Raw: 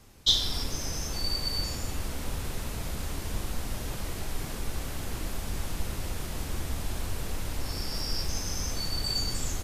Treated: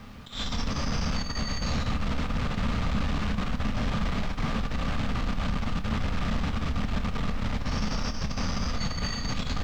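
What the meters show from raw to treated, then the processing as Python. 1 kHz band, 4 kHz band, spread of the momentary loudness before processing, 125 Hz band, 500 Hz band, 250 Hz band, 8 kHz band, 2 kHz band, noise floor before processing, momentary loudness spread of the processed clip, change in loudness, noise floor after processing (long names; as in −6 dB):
+7.5 dB, −5.5 dB, 8 LU, +5.5 dB, +3.0 dB, +9.5 dB, −7.0 dB, +6.5 dB, −37 dBFS, 2 LU, +1.5 dB, −32 dBFS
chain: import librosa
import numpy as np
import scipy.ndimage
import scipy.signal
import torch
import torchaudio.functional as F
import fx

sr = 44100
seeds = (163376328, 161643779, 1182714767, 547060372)

y = fx.tracing_dist(x, sr, depth_ms=0.078)
y = fx.over_compress(y, sr, threshold_db=-31.0, ratio=-0.5)
y = np.repeat(y[::4], 4)[:len(y)]
y = 10.0 ** (-29.5 / 20.0) * np.tanh(y / 10.0 ** (-29.5 / 20.0))
y = scipy.signal.sosfilt(scipy.signal.butter(2, 3900.0, 'lowpass', fs=sr, output='sos'), y)
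y = fx.peak_eq(y, sr, hz=350.0, db=-11.5, octaves=0.4)
y = fx.doubler(y, sr, ms=28.0, db=-11.0)
y = fx.small_body(y, sr, hz=(210.0, 1200.0), ring_ms=30, db=9)
y = fx.quant_dither(y, sr, seeds[0], bits=12, dither='none')
y = y * librosa.db_to_amplitude(7.0)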